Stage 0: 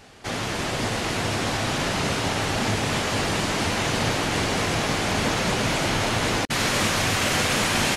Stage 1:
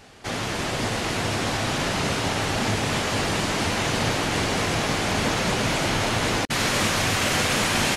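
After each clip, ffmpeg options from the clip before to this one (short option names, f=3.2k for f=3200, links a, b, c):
-af anull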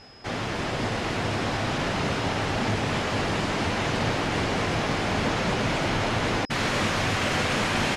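-af "aeval=exprs='val(0)+0.00631*sin(2*PI*5100*n/s)':c=same,aemphasis=mode=reproduction:type=50fm,acontrast=74,volume=-8dB"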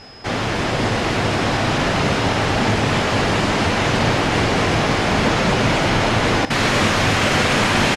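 -af "aecho=1:1:43|62:0.178|0.141,volume=8dB"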